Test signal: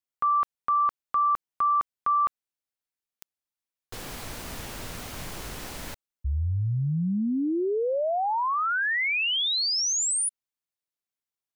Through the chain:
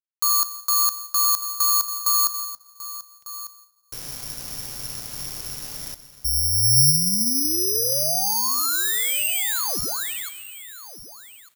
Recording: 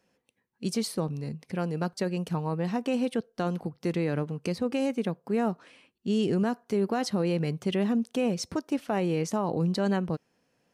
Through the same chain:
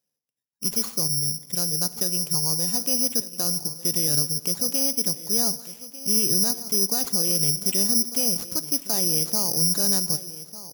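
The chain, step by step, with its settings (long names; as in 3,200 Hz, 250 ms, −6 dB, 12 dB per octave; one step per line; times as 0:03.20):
noise gate −59 dBFS, range −17 dB
parametric band 130 Hz +7.5 dB 0.53 octaves
reversed playback
upward compression 1.5 to 1, threshold −53 dBFS
reversed playback
high-frequency loss of the air 69 metres
on a send: single-tap delay 1,198 ms −15.5 dB
on the sum: dense smooth reverb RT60 1.7 s, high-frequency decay 0.9×, DRR 15 dB
bad sample-rate conversion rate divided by 8×, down none, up zero stuff
level −5.5 dB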